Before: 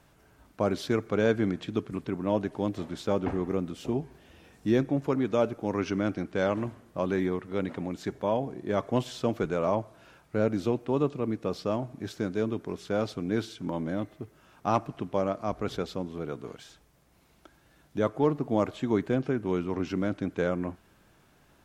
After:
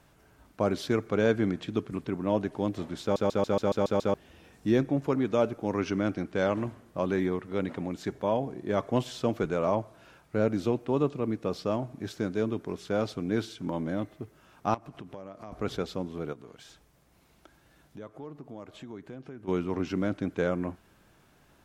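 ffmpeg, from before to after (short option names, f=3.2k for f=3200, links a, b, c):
-filter_complex "[0:a]asettb=1/sr,asplit=3[a][b][c];[a]atrim=end=14.744[d];[b]atrim=start=14.74:end=15.52,asetpts=PTS-STARTPTS,afade=t=in:d=0.004:c=qsin,afade=t=out:st=0.776:d=0.004:c=qsin,acompressor=threshold=-39dB:ratio=6:attack=3.2:release=140:knee=1:detection=peak[e];[c]atrim=start=15.516[f];[d][e]acrossfade=d=0.004:c1=hsin:c2=qsin[g];[g][f]acrossfade=d=0.004:c1=qsin:c2=hsin,asplit=3[h][i][j];[h]afade=t=out:st=16.32:d=0.02[k];[i]acompressor=threshold=-47dB:ratio=2.5:attack=3.2:release=140:knee=1:detection=peak,afade=t=in:st=16.32:d=0.02,afade=t=out:st=19.47:d=0.02[l];[j]afade=t=in:st=19.47:d=0.02[m];[k][l][m]amix=inputs=3:normalize=0,asplit=9[n][o][p][q][r][s][t][u][v];[n]atrim=end=3.162[w];[o]atrim=start=3.018:end=3.162[x];[p]atrim=start=3.018:end=3.162[y];[q]atrim=start=3.018:end=3.162[z];[r]atrim=start=3.018:end=3.162[aa];[s]atrim=start=3.018:end=3.162[ab];[t]atrim=start=3.018:end=3.162[ac];[u]atrim=start=3.018:end=3.162[ad];[v]atrim=start=4.138[ae];[w][x]acrossfade=d=0.004:c1=hsin:c2=hsin[af];[af][y]acrossfade=d=0.004:c1=hsin:c2=hsin[ag];[ag][z]acrossfade=d=0.004:c1=hsin:c2=hsin[ah];[ah][aa]acrossfade=d=0.004:c1=hsin:c2=hsin[ai];[ai][ab]acrossfade=d=0.004:c1=hsin:c2=hsin[aj];[aj][ac]acrossfade=d=0.004:c1=hsin:c2=hsin[ak];[ak][ad]acrossfade=d=0.004:c1=hsin:c2=hsin[al];[al][ae]acrossfade=d=0.004:c1=hsin:c2=hsin"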